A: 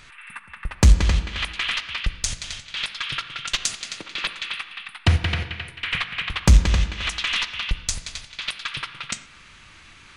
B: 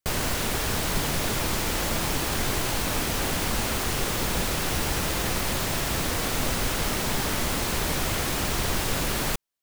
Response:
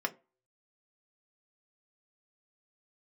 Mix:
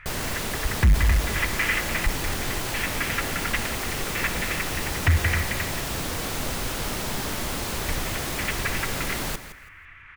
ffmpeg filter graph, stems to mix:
-filter_complex "[0:a]firequalizer=gain_entry='entry(100,0);entry(230,-15);entry(1900,2);entry(4100,-26)':delay=0.05:min_phase=1,volume=1.26,asplit=3[s0][s1][s2];[s0]atrim=end=5.81,asetpts=PTS-STARTPTS,afade=t=out:st=5.806:d=0.004:c=hsin[s3];[s1]atrim=start=5.81:end=7.82,asetpts=PTS-STARTPTS,volume=0[s4];[s2]atrim=start=7.82,asetpts=PTS-STARTPTS,afade=t=in:d=0.004:c=hsin[s5];[s3][s4][s5]concat=n=3:v=0:a=1,asplit=2[s6][s7];[s7]volume=0.282[s8];[1:a]volume=0.75,asplit=2[s9][s10];[s10]volume=0.224[s11];[2:a]atrim=start_sample=2205[s12];[s8][s12]afir=irnorm=-1:irlink=0[s13];[s11]aecho=0:1:165|330|495|660:1|0.24|0.0576|0.0138[s14];[s6][s9][s13][s14]amix=inputs=4:normalize=0,asoftclip=type=tanh:threshold=0.251"

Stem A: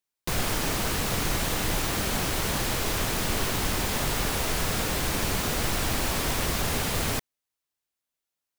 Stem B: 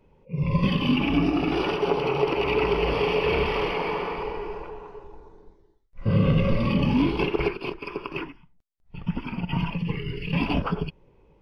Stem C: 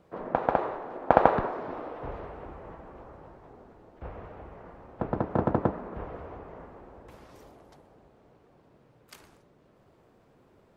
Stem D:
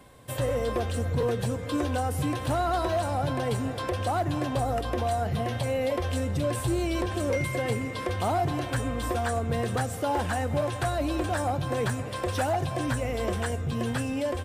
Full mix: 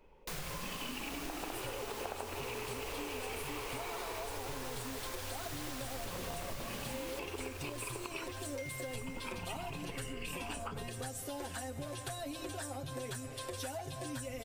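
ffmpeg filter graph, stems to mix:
-filter_complex "[0:a]volume=0.335,asplit=2[s0][s1];[s1]volume=0.376[s2];[1:a]acompressor=threshold=0.0282:ratio=3,volume=1.12[s3];[2:a]adelay=950,volume=0.282[s4];[3:a]equalizer=f=1100:t=o:w=2.8:g=-12.5,aecho=1:1:7.5:0.87,adelay=1250,volume=0.891[s5];[s2]aecho=0:1:870|1740|2610|3480|4350|5220|6090|6960:1|0.53|0.281|0.149|0.0789|0.0418|0.0222|0.0117[s6];[s0][s3][s4][s5][s6]amix=inputs=5:normalize=0,equalizer=f=130:w=0.55:g=-14,acompressor=threshold=0.0126:ratio=6"

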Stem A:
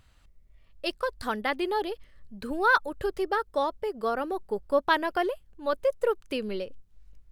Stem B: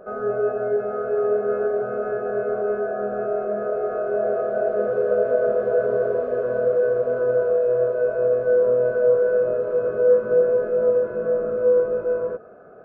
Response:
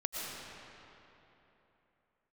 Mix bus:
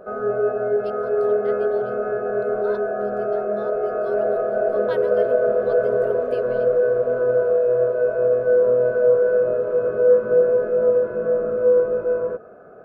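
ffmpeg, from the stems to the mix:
-filter_complex "[0:a]volume=0.266,afade=t=in:st=3.5:d=0.62:silence=0.421697[s0];[1:a]volume=1.19[s1];[s0][s1]amix=inputs=2:normalize=0"

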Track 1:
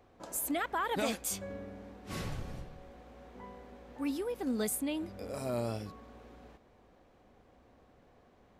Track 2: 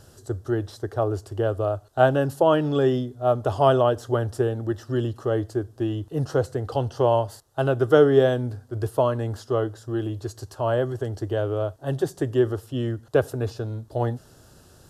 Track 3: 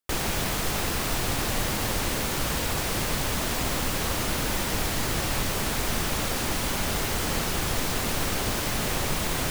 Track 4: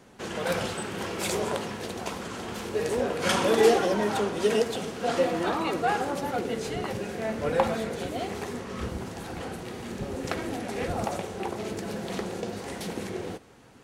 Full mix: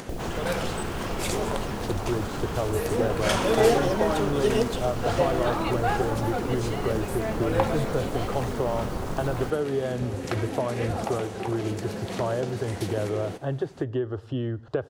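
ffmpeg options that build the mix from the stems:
-filter_complex "[0:a]acompressor=threshold=0.0112:ratio=6,adelay=2400,volume=0.891[s0];[1:a]lowpass=3200,acompressor=threshold=0.0501:ratio=6,adelay=1600,volume=1.19[s1];[2:a]afwtdn=0.0398,volume=0.708[s2];[3:a]volume=0.944[s3];[s0][s1][s2][s3]amix=inputs=4:normalize=0,acompressor=mode=upward:threshold=0.0398:ratio=2.5"

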